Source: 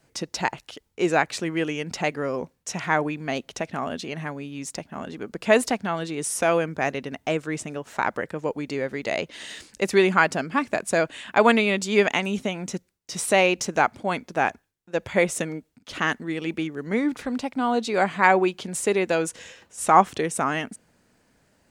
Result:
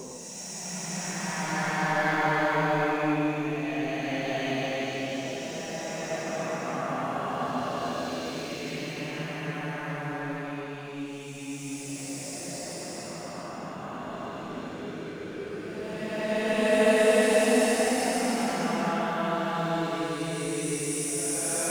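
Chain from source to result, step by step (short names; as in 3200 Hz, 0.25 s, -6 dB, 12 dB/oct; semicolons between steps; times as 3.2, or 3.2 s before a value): sample leveller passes 2; Paulstretch 5.7×, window 0.50 s, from 2.53; gain -8.5 dB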